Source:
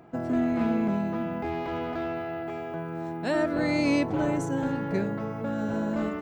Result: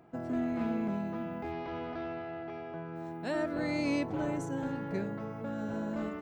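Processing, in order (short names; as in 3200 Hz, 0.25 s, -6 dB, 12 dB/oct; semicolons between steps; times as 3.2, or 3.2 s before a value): 1.52–2.96 brick-wall FIR low-pass 6200 Hz; gain -7 dB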